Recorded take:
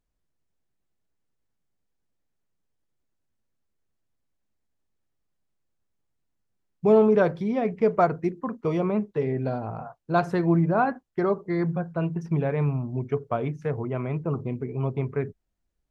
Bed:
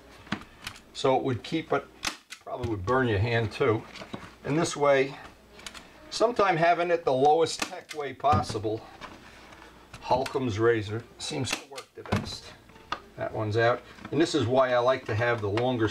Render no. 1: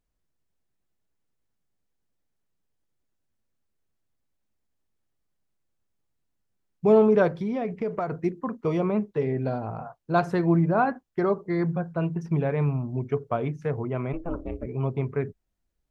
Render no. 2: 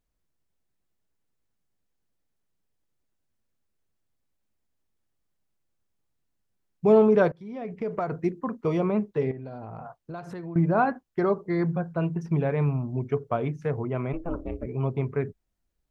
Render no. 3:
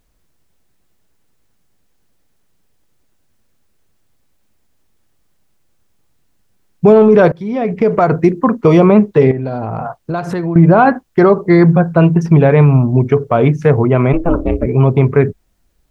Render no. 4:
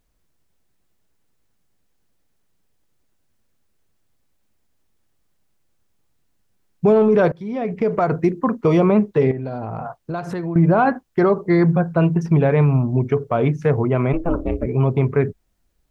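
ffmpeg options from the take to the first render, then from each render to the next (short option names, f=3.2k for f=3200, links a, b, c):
-filter_complex "[0:a]asplit=3[a][b][c];[a]afade=t=out:st=7.28:d=0.02[d];[b]acompressor=threshold=-24dB:ratio=6:attack=3.2:release=140:knee=1:detection=peak,afade=t=in:st=7.28:d=0.02,afade=t=out:st=8.17:d=0.02[e];[c]afade=t=in:st=8.17:d=0.02[f];[d][e][f]amix=inputs=3:normalize=0,asplit=3[g][h][i];[g]afade=t=out:st=14.12:d=0.02[j];[h]aeval=exprs='val(0)*sin(2*PI*170*n/s)':c=same,afade=t=in:st=14.12:d=0.02,afade=t=out:st=14.65:d=0.02[k];[i]afade=t=in:st=14.65:d=0.02[l];[j][k][l]amix=inputs=3:normalize=0"
-filter_complex "[0:a]asettb=1/sr,asplit=3[a][b][c];[a]atrim=end=9.314[d];[b]atrim=start=9.31:end=10.56,asetpts=PTS-STARTPTS,afade=t=in:d=0.004:c=qsin,afade=t=out:st=1.246:d=0.004:c=qsin,acompressor=threshold=-35dB:ratio=6:attack=3.2:release=140:knee=1:detection=peak[e];[c]atrim=start=10.556[f];[d][e]acrossfade=d=0.004:c1=hsin:c2=qsin[g];[g][f]acrossfade=d=0.004:c1=qsin:c2=hsin,asplit=2[h][i];[h]atrim=end=7.32,asetpts=PTS-STARTPTS,afade=t=out:st=7.316:d=0.004:c=hsin:silence=0.0707946[j];[i]atrim=start=7.32,asetpts=PTS-STARTPTS,afade=t=in:d=0.65:silence=0.0707946[k];[j][k]concat=n=2:v=0:a=1"
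-af "acontrast=54,alimiter=level_in=12dB:limit=-1dB:release=50:level=0:latency=1"
-af "volume=-7dB"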